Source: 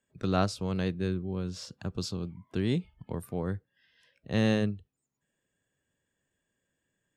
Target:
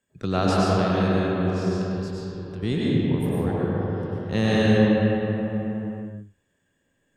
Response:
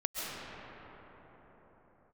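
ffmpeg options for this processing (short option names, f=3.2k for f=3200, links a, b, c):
-filter_complex "[0:a]asettb=1/sr,asplit=3[a][b][c];[a]atrim=end=1.504[d];[b]atrim=start=1.5:end=2.63,asetpts=PTS-STARTPTS,afade=t=in:d=0.004:c=qsin,afade=t=out:st=1.126:d=0.004:c=qsin,acompressor=threshold=-46dB:ratio=4[e];[c]atrim=start=2.626[f];[d][e]acrossfade=d=0.004:c1=hsin:c2=qsin[g];[g][f]acrossfade=d=0.004:c1=qsin:c2=hsin[h];[1:a]atrim=start_sample=2205,asetrate=57330,aresample=44100[i];[h][i]afir=irnorm=-1:irlink=0,volume=6dB"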